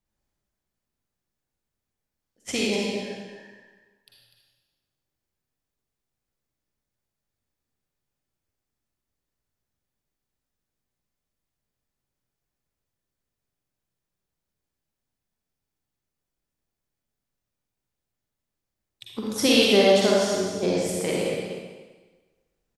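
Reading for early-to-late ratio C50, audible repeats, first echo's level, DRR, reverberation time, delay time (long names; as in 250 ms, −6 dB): −3.5 dB, 1, −8.5 dB, −4.5 dB, 1.3 s, 247 ms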